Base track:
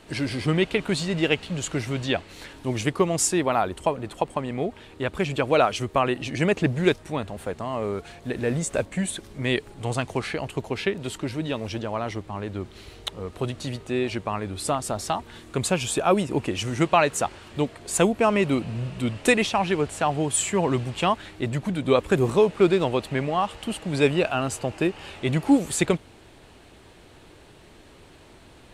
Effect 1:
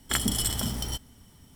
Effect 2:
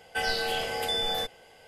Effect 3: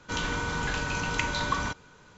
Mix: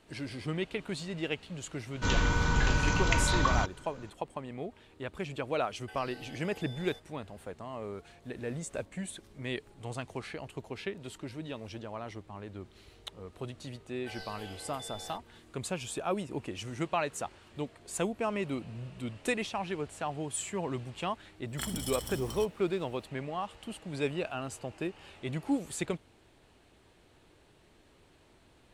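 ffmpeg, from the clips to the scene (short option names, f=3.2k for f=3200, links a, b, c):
-filter_complex "[2:a]asplit=2[a][b];[0:a]volume=-12dB[c];[3:a]lowshelf=f=120:g=11[d];[a]acompressor=threshold=-32dB:ratio=4:attack=3.3:release=479:knee=1:detection=peak[e];[d]atrim=end=2.17,asetpts=PTS-STARTPTS,volume=-0.5dB,afade=t=in:d=0.004:c=hsin,afade=t=out:st=2.166:d=0.004:c=hsin,adelay=1930[f];[e]atrim=end=1.67,asetpts=PTS-STARTPTS,volume=-14dB,afade=t=in:d=0.004:c=hsin,afade=t=out:st=1.666:d=0.004:c=hsin,adelay=252693S[g];[b]atrim=end=1.67,asetpts=PTS-STARTPTS,volume=-17.5dB,afade=t=in:d=0.004:c=hsin,afade=t=out:st=1.666:d=0.004:c=hsin,adelay=13910[h];[1:a]atrim=end=1.55,asetpts=PTS-STARTPTS,volume=-11dB,afade=t=in:d=0.004:c=hsin,afade=t=out:st=1.546:d=0.004:c=hsin,adelay=947268S[i];[c][f][g][h][i]amix=inputs=5:normalize=0"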